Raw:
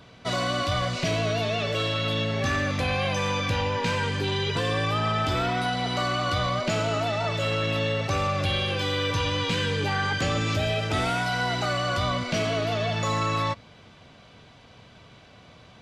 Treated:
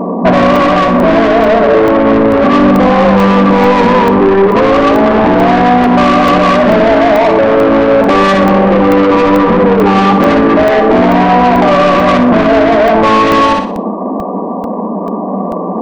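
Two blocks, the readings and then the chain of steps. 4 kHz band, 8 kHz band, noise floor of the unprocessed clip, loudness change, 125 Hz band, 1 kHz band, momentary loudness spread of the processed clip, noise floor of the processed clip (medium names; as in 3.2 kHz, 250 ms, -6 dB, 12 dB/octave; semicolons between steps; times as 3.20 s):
+5.5 dB, no reading, -51 dBFS, +18.0 dB, +9.5 dB, +20.0 dB, 10 LU, -17 dBFS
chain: tracing distortion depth 0.27 ms; FFT band-pass 180–1200 Hz; bass shelf 340 Hz +6.5 dB; in parallel at -1 dB: compression 12:1, threshold -38 dBFS, peak gain reduction 17 dB; on the sum: saturation -30.5 dBFS, distortion -8 dB; flange 0.2 Hz, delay 0.4 ms, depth 6.8 ms, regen -85%; flutter echo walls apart 10.5 m, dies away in 0.44 s; loudness maximiser +35.5 dB; crackling interface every 0.44 s, samples 64, zero, from 0.56 s; trim -1 dB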